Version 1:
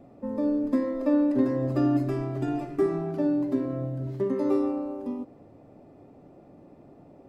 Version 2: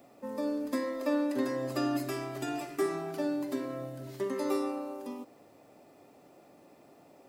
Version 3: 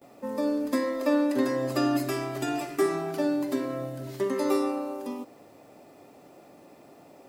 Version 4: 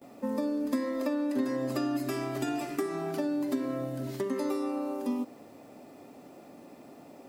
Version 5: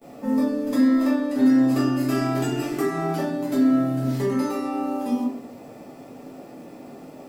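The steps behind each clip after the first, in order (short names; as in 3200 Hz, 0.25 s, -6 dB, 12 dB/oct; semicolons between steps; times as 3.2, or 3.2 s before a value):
tilt +4.5 dB/oct
gate with hold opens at -49 dBFS; gain +5.5 dB
compressor 6:1, threshold -30 dBFS, peak gain reduction 10.5 dB; bell 240 Hz +7 dB 0.52 oct
shoebox room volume 63 m³, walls mixed, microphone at 1.5 m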